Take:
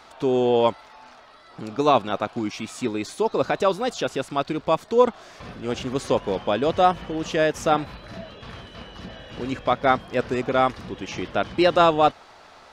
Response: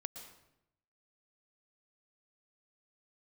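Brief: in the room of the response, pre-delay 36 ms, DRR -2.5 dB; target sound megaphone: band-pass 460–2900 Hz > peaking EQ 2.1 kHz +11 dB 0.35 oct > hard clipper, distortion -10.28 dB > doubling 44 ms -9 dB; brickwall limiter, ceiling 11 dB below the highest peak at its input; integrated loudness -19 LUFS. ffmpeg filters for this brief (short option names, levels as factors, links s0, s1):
-filter_complex "[0:a]alimiter=limit=0.168:level=0:latency=1,asplit=2[s0][s1];[1:a]atrim=start_sample=2205,adelay=36[s2];[s1][s2]afir=irnorm=-1:irlink=0,volume=1.78[s3];[s0][s3]amix=inputs=2:normalize=0,highpass=460,lowpass=2900,equalizer=f=2100:t=o:w=0.35:g=11,asoftclip=type=hard:threshold=0.0891,asplit=2[s4][s5];[s5]adelay=44,volume=0.355[s6];[s4][s6]amix=inputs=2:normalize=0,volume=2.51"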